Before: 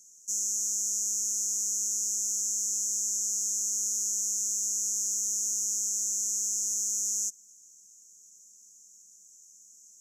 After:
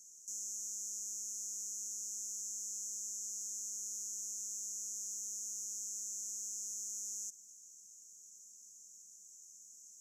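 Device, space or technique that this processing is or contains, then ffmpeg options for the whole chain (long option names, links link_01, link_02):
PA system with an anti-feedback notch: -af "highpass=frequency=110:poles=1,asuperstop=centerf=3500:order=4:qfactor=4.5,alimiter=level_in=8dB:limit=-24dB:level=0:latency=1:release=33,volume=-8dB,volume=-2dB"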